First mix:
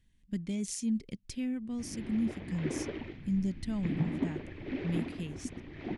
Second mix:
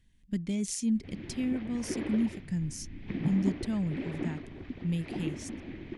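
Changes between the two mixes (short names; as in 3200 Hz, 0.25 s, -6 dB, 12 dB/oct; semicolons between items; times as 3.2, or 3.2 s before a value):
speech +3.0 dB; background: entry -0.75 s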